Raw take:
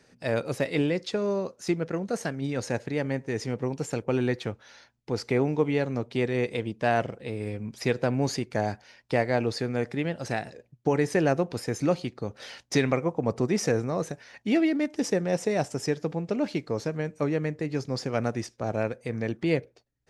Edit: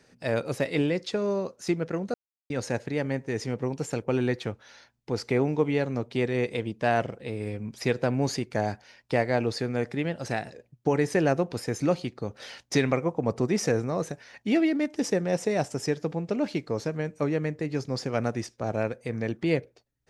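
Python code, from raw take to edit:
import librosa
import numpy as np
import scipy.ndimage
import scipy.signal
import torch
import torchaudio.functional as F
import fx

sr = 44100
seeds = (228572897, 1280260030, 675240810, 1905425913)

y = fx.edit(x, sr, fx.silence(start_s=2.14, length_s=0.36), tone=tone)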